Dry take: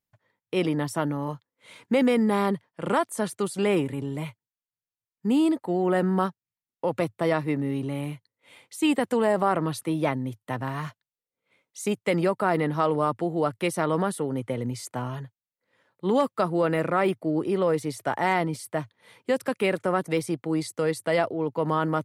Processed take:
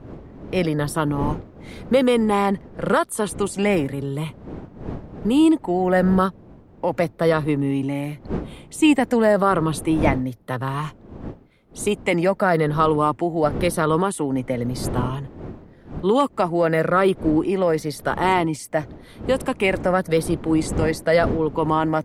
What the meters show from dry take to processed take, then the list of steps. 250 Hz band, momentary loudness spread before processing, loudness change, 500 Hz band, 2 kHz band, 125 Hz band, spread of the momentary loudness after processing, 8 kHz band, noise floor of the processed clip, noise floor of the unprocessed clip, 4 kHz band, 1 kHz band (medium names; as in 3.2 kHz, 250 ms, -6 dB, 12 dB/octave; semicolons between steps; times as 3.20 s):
+5.5 dB, 10 LU, +5.5 dB, +5.0 dB, +5.5 dB, +6.0 dB, 15 LU, +5.5 dB, -48 dBFS, under -85 dBFS, +5.5 dB, +5.0 dB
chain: drifting ripple filter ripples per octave 0.65, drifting -0.93 Hz, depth 7 dB; wind noise 300 Hz -38 dBFS; trim +4.5 dB